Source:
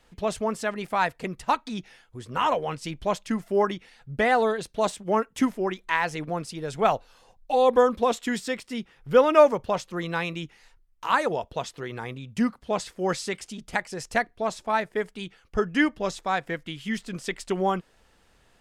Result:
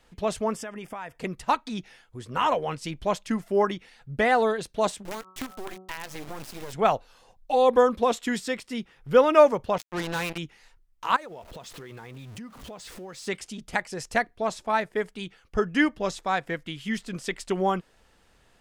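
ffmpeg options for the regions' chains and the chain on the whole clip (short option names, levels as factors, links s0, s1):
-filter_complex "[0:a]asettb=1/sr,asplit=3[s0][s1][s2];[s0]atrim=end=0.564[s3];[s1]atrim=start=0.56:end=1.19,asetpts=PTS-STARTPTS,afade=t=in:d=0.004:c=qsin,afade=t=out:st=0.626:d=0.004:c=qsin,acompressor=threshold=0.0224:ratio=6:attack=3.2:release=140:knee=1:detection=peak,asuperstop=centerf=4100:order=4:qfactor=4.1[s4];[s2]atrim=start=1.186[s5];[s3][s4]acrossfade=d=0.004:c1=hsin:c2=qsin[s6];[s6][s5]acrossfade=d=0.004:c1=qsin:c2=hsin,asettb=1/sr,asplit=3[s7][s8][s9];[s7]atrim=end=5.054[s10];[s8]atrim=start=5.05:end=6.73,asetpts=PTS-STARTPTS,afade=t=in:d=0.004:c=qsin,afade=t=out:st=1.676:d=0.004:c=qsin,acrusher=bits=4:dc=4:mix=0:aa=0.000001,bandreject=f=187:t=h:w=4,bandreject=f=374:t=h:w=4,bandreject=f=561:t=h:w=4,bandreject=f=748:t=h:w=4,bandreject=f=935:t=h:w=4,bandreject=f=1122:t=h:w=4,bandreject=f=1309:t=h:w=4,acompressor=threshold=0.0316:ratio=8:attack=3.2:release=140:knee=1:detection=peak[s11];[s9]atrim=start=6.726[s12];[s10][s11]acrossfade=d=0.004:c1=hsin:c2=qsin[s13];[s13][s12]acrossfade=d=0.004:c1=qsin:c2=hsin,asettb=1/sr,asplit=3[s14][s15][s16];[s14]atrim=end=9.784[s17];[s15]atrim=start=9.78:end=10.38,asetpts=PTS-STARTPTS,afade=t=in:d=0.004:c=qsin,afade=t=out:st=0.596:d=0.004:c=qsin,volume=20,asoftclip=hard,volume=0.0501,acrusher=bits=4:mix=0:aa=0.5[s18];[s16]atrim=start=10.376[s19];[s17][s18]acrossfade=d=0.004:c1=hsin:c2=qsin[s20];[s20][s19]acrossfade=d=0.004:c1=qsin:c2=hsin,asettb=1/sr,asplit=3[s21][s22][s23];[s21]atrim=end=11.164[s24];[s22]atrim=start=11.16:end=13.27,asetpts=PTS-STARTPTS,afade=t=in:d=0.004:c=qsin,afade=t=out:st=2.106:d=0.004:c=qsin,aeval=exprs='val(0)+0.5*0.01*sgn(val(0))':c=same,acompressor=threshold=0.0112:ratio=6:attack=3.2:release=140:knee=1:detection=peak[s25];[s23]atrim=start=13.266[s26];[s24][s25]acrossfade=d=0.004:c1=hsin:c2=qsin[s27];[s27][s26]acrossfade=d=0.004:c1=qsin:c2=hsin"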